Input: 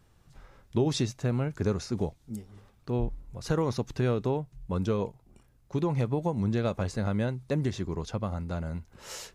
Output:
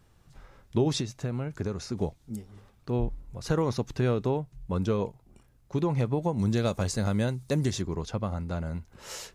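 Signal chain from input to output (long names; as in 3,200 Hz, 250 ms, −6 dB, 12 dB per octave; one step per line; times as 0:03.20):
0:00.99–0:02.02: downward compressor 5 to 1, threshold −29 dBFS, peak gain reduction 7 dB
0:06.39–0:07.82: bass and treble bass +1 dB, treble +11 dB
level +1 dB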